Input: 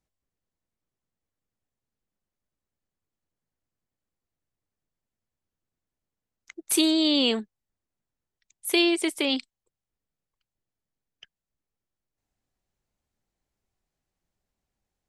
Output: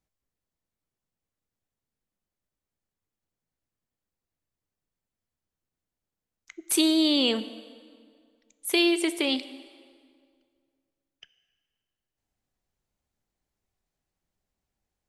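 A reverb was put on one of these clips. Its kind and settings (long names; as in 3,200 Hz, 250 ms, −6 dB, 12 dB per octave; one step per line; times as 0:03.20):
dense smooth reverb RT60 2.1 s, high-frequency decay 0.75×, DRR 13 dB
level −1 dB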